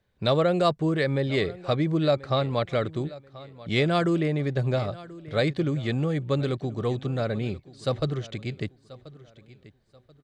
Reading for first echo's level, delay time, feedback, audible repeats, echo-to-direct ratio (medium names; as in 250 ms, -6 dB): -19.0 dB, 1034 ms, 30%, 2, -18.5 dB